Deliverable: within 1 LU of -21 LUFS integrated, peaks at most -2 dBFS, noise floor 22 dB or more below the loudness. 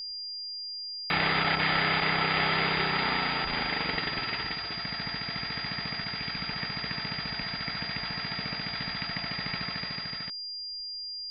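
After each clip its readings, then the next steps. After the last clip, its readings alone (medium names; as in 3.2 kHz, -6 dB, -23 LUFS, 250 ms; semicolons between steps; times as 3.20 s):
steady tone 4.8 kHz; tone level -35 dBFS; loudness -29.5 LUFS; peak level -15.0 dBFS; loudness target -21.0 LUFS
-> band-stop 4.8 kHz, Q 30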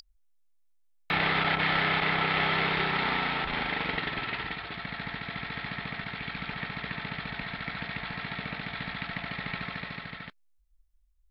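steady tone not found; loudness -30.0 LUFS; peak level -15.0 dBFS; loudness target -21.0 LUFS
-> trim +9 dB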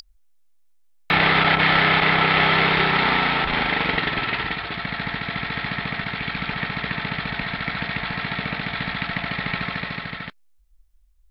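loudness -21.0 LUFS; peak level -6.0 dBFS; noise floor -56 dBFS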